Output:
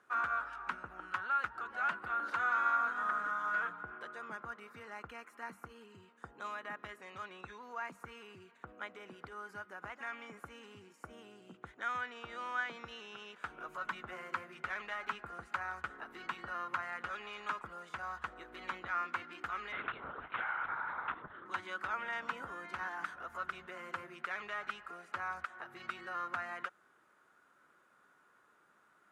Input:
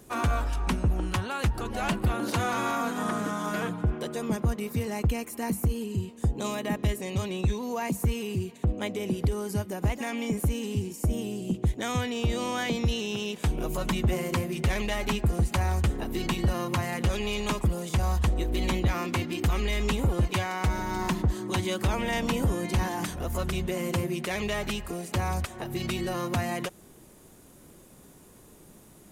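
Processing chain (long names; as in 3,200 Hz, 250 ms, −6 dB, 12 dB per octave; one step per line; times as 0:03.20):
0:19.72–0:21.46: linear-prediction vocoder at 8 kHz whisper
resonant band-pass 1,400 Hz, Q 5.8
level +4.5 dB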